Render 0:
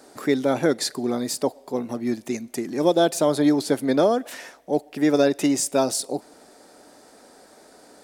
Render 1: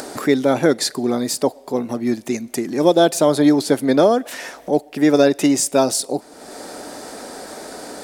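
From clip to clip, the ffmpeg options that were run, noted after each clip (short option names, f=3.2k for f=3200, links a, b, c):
-af "acompressor=mode=upward:threshold=-27dB:ratio=2.5,volume=5dB"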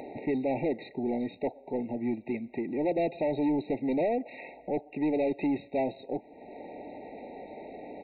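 -af "aresample=8000,asoftclip=type=tanh:threshold=-15.5dB,aresample=44100,afftfilt=real='re*eq(mod(floor(b*sr/1024/930),2),0)':imag='im*eq(mod(floor(b*sr/1024/930),2),0)':win_size=1024:overlap=0.75,volume=-8dB"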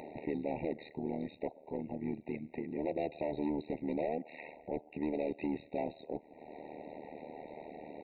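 -filter_complex "[0:a]asplit=2[a][b];[b]acompressor=threshold=-38dB:ratio=6,volume=-1dB[c];[a][c]amix=inputs=2:normalize=0,tremolo=f=76:d=0.889,volume=-5.5dB"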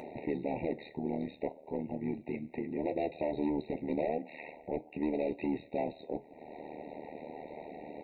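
-af "flanger=delay=7.9:depth=6.1:regen=-68:speed=0.36:shape=triangular,volume=6.5dB"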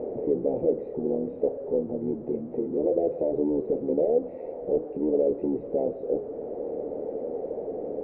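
-af "aeval=exprs='val(0)+0.5*0.0119*sgn(val(0))':c=same,lowpass=f=480:t=q:w=4.9"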